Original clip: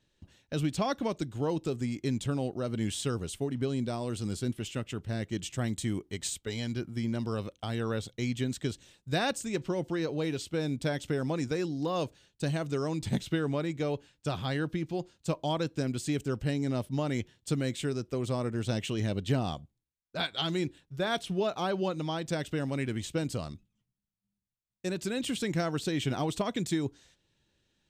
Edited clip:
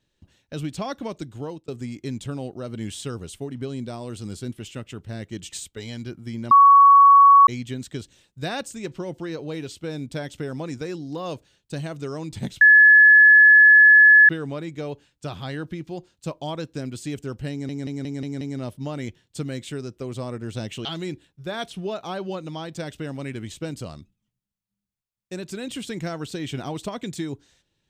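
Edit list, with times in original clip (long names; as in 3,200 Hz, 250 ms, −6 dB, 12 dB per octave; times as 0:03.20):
0:01.29–0:01.68: fade out equal-power
0:05.52–0:06.22: remove
0:07.21–0:08.17: beep over 1,120 Hz −8 dBFS
0:13.31: insert tone 1,710 Hz −8 dBFS 1.68 s
0:16.53: stutter 0.18 s, 6 plays
0:18.97–0:20.38: remove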